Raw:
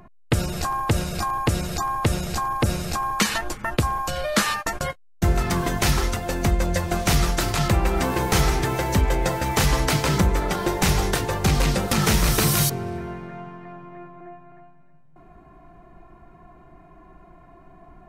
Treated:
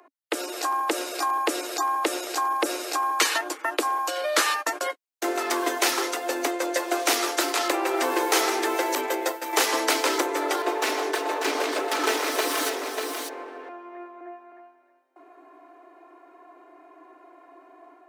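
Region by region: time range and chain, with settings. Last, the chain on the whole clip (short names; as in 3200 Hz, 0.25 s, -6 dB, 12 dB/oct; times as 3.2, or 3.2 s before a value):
8.95–9.53 expander -19 dBFS + bell 14000 Hz +8 dB 0.37 oct
10.62–13.69 minimum comb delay 4.6 ms + high shelf 4800 Hz -10.5 dB + echo 0.592 s -6 dB
whole clip: steep high-pass 280 Hz 96 dB/oct; AGC gain up to 3.5 dB; gain -2.5 dB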